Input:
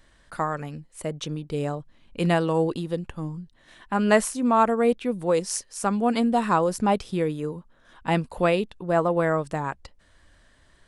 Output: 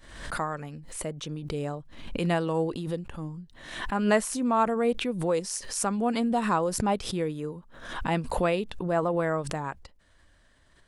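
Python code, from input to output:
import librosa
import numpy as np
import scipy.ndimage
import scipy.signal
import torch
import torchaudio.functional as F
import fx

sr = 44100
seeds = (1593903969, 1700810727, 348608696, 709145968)

y = fx.pre_swell(x, sr, db_per_s=63.0)
y = y * 10.0 ** (-4.5 / 20.0)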